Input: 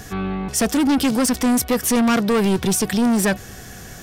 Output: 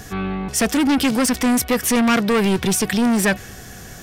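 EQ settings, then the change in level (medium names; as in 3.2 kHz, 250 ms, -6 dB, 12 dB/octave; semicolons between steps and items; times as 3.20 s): dynamic bell 2.2 kHz, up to +5 dB, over -37 dBFS, Q 1.1; 0.0 dB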